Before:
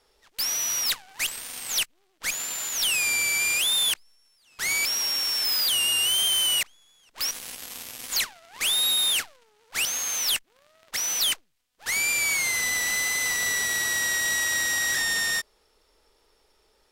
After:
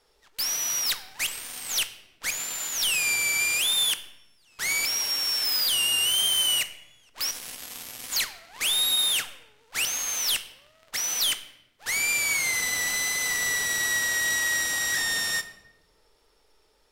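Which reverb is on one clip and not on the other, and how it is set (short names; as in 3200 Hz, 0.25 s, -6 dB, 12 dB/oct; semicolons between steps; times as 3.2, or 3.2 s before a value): shoebox room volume 400 m³, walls mixed, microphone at 0.4 m; gain -1 dB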